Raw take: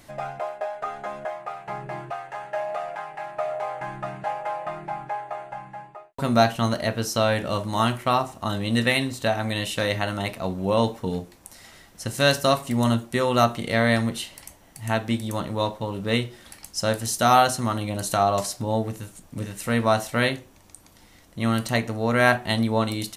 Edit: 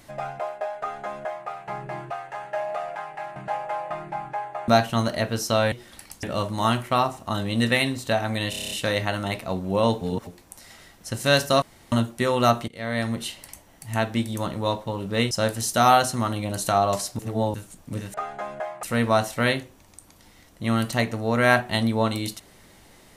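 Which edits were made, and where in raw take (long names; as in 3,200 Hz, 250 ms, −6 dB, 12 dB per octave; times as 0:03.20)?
0:00.79–0:01.48: duplicate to 0:19.59
0:03.36–0:04.12: remove
0:05.44–0:06.34: remove
0:09.65: stutter 0.03 s, 8 plays
0:10.95–0:11.21: reverse
0:12.56–0:12.86: fill with room tone
0:13.62–0:14.23: fade in, from −23.5 dB
0:16.25–0:16.76: move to 0:07.38
0:18.64–0:18.99: reverse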